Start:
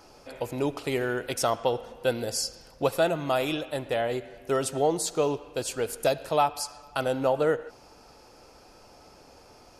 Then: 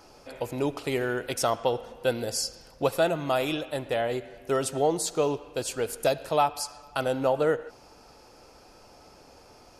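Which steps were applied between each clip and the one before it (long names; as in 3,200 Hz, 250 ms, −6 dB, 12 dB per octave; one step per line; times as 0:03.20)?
no processing that can be heard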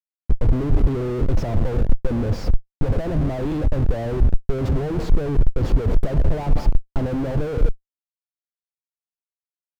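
phaser swept by the level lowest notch 370 Hz, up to 1,800 Hz, full sweep at −30 dBFS
comparator with hysteresis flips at −39.5 dBFS
spectral tilt −4.5 dB per octave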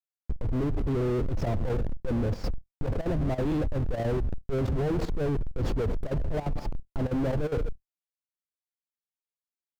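brickwall limiter −15 dBFS, peak gain reduction 10.5 dB
output level in coarse steps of 13 dB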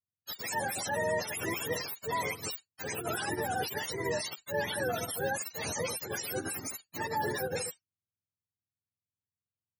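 frequency axis turned over on the octave scale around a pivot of 480 Hz
level −2 dB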